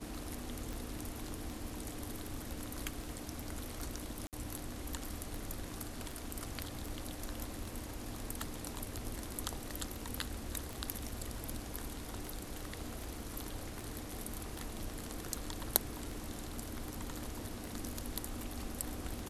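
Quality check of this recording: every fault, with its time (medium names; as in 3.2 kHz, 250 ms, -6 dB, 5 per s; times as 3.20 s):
tick 78 rpm
4.27–4.33 s: dropout 58 ms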